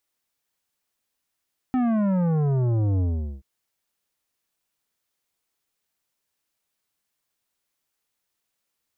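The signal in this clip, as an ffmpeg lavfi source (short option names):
-f lavfi -i "aevalsrc='0.0944*clip((1.68-t)/0.42,0,1)*tanh(3.76*sin(2*PI*260*1.68/log(65/260)*(exp(log(65/260)*t/1.68)-1)))/tanh(3.76)':d=1.68:s=44100"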